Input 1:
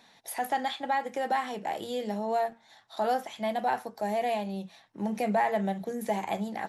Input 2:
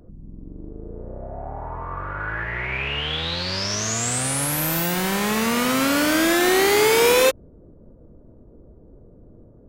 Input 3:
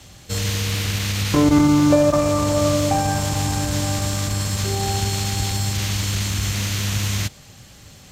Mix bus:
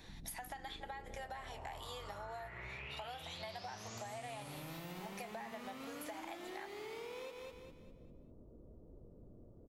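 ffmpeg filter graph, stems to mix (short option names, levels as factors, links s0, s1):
-filter_complex "[0:a]highpass=920,acompressor=threshold=0.02:ratio=6,volume=1.06,asplit=2[s0][s1];[s1]volume=0.0841[s2];[1:a]acrossover=split=4700[s3][s4];[s4]acompressor=threshold=0.0158:ratio=4:attack=1:release=60[s5];[s3][s5]amix=inputs=2:normalize=0,equalizer=f=1600:w=6.2:g=-10,acompressor=threshold=0.0316:ratio=6,volume=0.282,asplit=2[s6][s7];[s7]volume=0.447[s8];[s2][s8]amix=inputs=2:normalize=0,aecho=0:1:200|400|600|800|1000:1|0.38|0.144|0.0549|0.0209[s9];[s0][s6][s9]amix=inputs=3:normalize=0,acompressor=threshold=0.00631:ratio=6"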